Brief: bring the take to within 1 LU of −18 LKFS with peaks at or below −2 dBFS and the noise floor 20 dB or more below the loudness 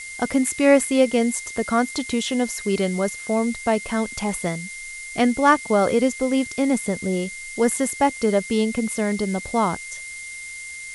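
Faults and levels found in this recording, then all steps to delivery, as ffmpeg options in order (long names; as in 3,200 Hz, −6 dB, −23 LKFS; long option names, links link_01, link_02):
interfering tone 2,100 Hz; level of the tone −34 dBFS; background noise floor −36 dBFS; target noise floor −42 dBFS; integrated loudness −22.0 LKFS; sample peak −3.0 dBFS; target loudness −18.0 LKFS
→ -af "bandreject=frequency=2100:width=30"
-af "afftdn=noise_reduction=6:noise_floor=-36"
-af "volume=4dB,alimiter=limit=-2dB:level=0:latency=1"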